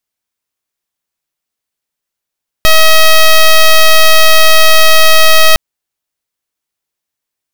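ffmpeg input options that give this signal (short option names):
-f lavfi -i "aevalsrc='0.668*(2*lt(mod(637*t,1),0.08)-1)':d=2.91:s=44100"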